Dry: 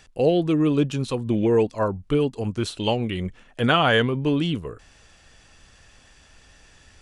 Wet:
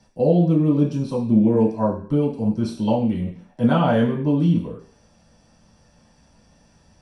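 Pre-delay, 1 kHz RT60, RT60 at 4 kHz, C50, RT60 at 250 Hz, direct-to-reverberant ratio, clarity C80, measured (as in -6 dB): 3 ms, 0.45 s, n/a, 8.0 dB, 0.55 s, -6.0 dB, 12.5 dB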